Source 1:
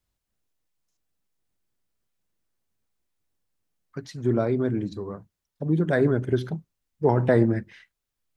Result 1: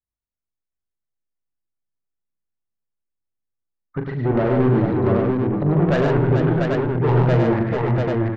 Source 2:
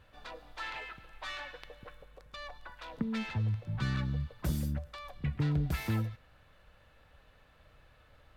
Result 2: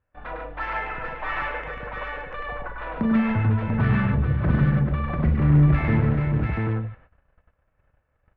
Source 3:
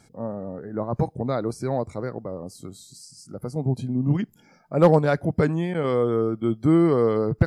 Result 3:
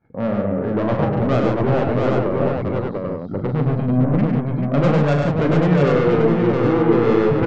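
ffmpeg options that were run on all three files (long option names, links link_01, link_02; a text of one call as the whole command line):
ffmpeg -i in.wav -filter_complex "[0:a]lowpass=frequency=2300:width=0.5412,lowpass=frequency=2300:width=1.3066,agate=range=-28dB:threshold=-55dB:ratio=16:detection=peak,aemphasis=mode=reproduction:type=50kf,asplit=2[link_01][link_02];[link_02]acontrast=72,volume=2.5dB[link_03];[link_01][link_03]amix=inputs=2:normalize=0,alimiter=limit=-6.5dB:level=0:latency=1:release=48,aresample=16000,asoftclip=type=tanh:threshold=-17dB,aresample=44100,aecho=1:1:40|102|143|438|692|789:0.422|0.596|0.531|0.473|0.668|0.631" out.wav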